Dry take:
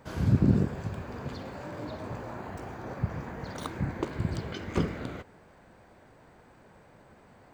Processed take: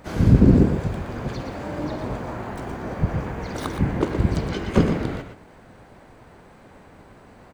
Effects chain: harmoniser -12 st -3 dB, +5 st -8 dB; echo 0.119 s -8 dB; dynamic EQ 360 Hz, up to +4 dB, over -37 dBFS, Q 0.81; gain +5.5 dB

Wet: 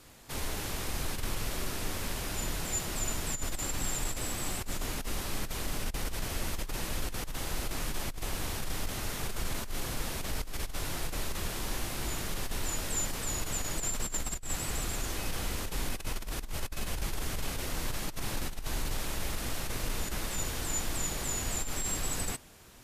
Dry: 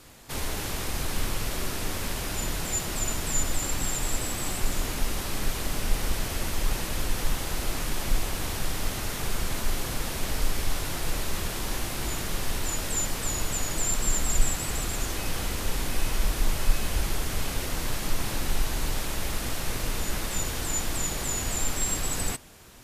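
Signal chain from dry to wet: negative-ratio compressor -25 dBFS, ratio -0.5; gain -5.5 dB

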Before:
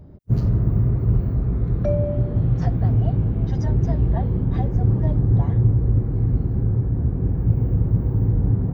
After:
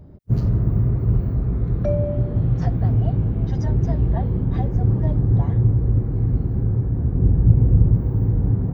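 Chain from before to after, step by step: 7.15–7.94 tilt -1.5 dB/oct

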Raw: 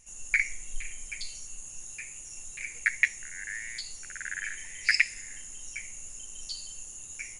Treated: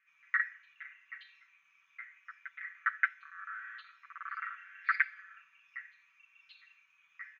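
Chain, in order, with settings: Chebyshev band-stop 200–1500 Hz, order 4; comb 5.3 ms, depth 76%; mistuned SSB -360 Hz 460–3200 Hz; on a send: reverse echo 0.577 s -18 dB; on the sum: gain -6 dB

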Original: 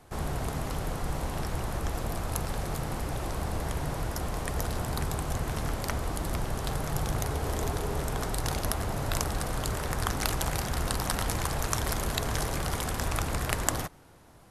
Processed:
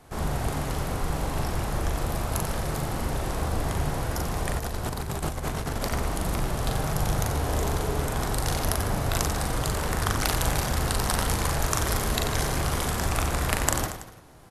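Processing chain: on a send: reverse bouncing-ball echo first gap 40 ms, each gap 1.25×, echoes 5; 4.59–5.91 on the sum: negative-ratio compressor -31 dBFS, ratio -0.5; gain +2 dB

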